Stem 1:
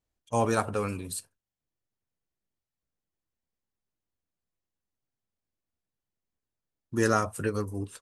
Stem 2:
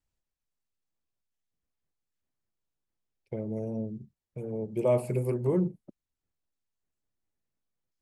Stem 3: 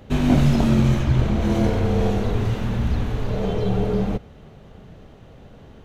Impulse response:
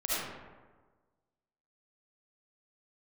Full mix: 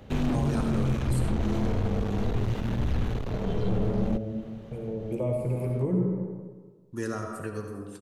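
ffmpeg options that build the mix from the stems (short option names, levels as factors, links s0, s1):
-filter_complex "[0:a]volume=0.398,asplit=2[s0][s1];[s1]volume=0.355[s2];[1:a]bandreject=f=370:w=12,adelay=350,volume=0.75,asplit=2[s3][s4];[s4]volume=0.531[s5];[2:a]aeval=exprs='(tanh(12.6*val(0)+0.55)-tanh(0.55))/12.6':c=same,volume=0.944[s6];[3:a]atrim=start_sample=2205[s7];[s2][s5]amix=inputs=2:normalize=0[s8];[s8][s7]afir=irnorm=-1:irlink=0[s9];[s0][s3][s6][s9]amix=inputs=4:normalize=0,acrossover=split=340[s10][s11];[s11]acompressor=threshold=0.0158:ratio=2.5[s12];[s10][s12]amix=inputs=2:normalize=0"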